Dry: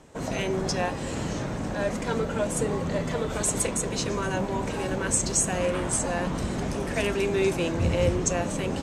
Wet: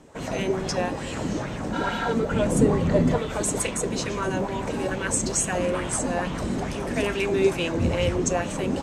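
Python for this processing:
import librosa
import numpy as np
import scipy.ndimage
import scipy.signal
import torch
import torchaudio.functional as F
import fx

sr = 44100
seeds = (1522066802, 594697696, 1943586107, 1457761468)

y = fx.spec_repair(x, sr, seeds[0], start_s=1.76, length_s=0.3, low_hz=590.0, high_hz=11000.0, source='after')
y = fx.low_shelf(y, sr, hz=460.0, db=9.0, at=(2.31, 3.18))
y = fx.bell_lfo(y, sr, hz=2.3, low_hz=220.0, high_hz=3200.0, db=9)
y = y * librosa.db_to_amplitude(-1.0)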